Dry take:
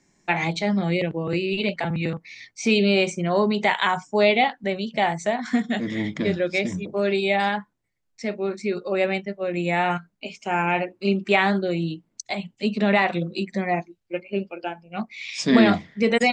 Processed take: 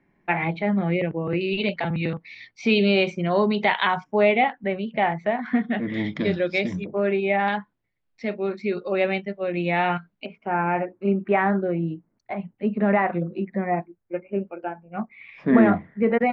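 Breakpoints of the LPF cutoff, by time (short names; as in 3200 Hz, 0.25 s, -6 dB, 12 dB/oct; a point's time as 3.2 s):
LPF 24 dB/oct
2500 Hz
from 1.41 s 4100 Hz
from 4.04 s 2600 Hz
from 5.94 s 4800 Hz
from 6.84 s 2400 Hz
from 7.48 s 3900 Hz
from 10.26 s 1800 Hz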